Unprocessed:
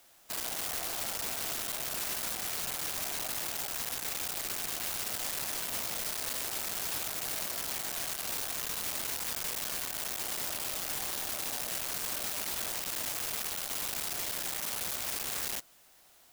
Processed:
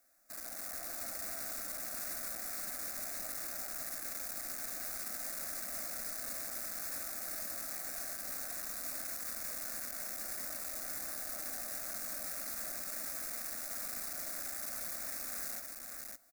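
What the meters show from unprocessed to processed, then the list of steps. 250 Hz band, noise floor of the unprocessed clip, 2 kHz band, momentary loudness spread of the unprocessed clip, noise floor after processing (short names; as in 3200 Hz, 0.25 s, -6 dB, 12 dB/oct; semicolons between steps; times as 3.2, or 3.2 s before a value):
-5.5 dB, -61 dBFS, -6.5 dB, 1 LU, -46 dBFS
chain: AGC gain up to 3 dB; fixed phaser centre 620 Hz, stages 8; echo 0.56 s -4 dB; gain -8.5 dB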